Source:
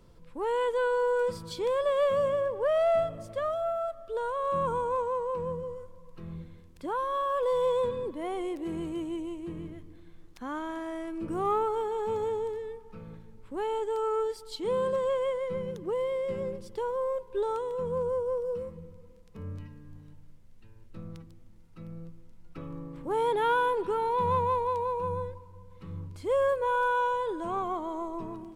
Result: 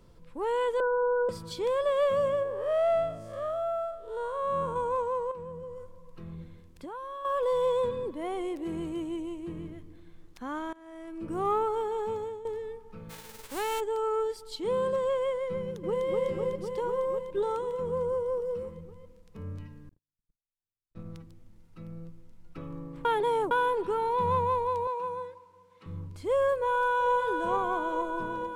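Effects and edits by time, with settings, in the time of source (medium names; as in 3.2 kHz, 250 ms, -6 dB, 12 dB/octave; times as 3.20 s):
0.80–1.29 s: steep low-pass 1.6 kHz 96 dB/octave
2.43–4.76 s: spectral blur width 142 ms
5.31–7.25 s: compression, threshold -37 dBFS
10.73–11.42 s: fade in, from -23 dB
11.99–12.45 s: fade out linear, to -13 dB
13.09–13.79 s: formants flattened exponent 0.3
15.58–16.05 s: echo throw 250 ms, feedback 80%, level -2.5 dB
19.89–21.06 s: gate -42 dBFS, range -50 dB
23.05–23.51 s: reverse
24.87–25.86 s: frequency weighting A
26.55–27.11 s: echo throw 450 ms, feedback 75%, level -4.5 dB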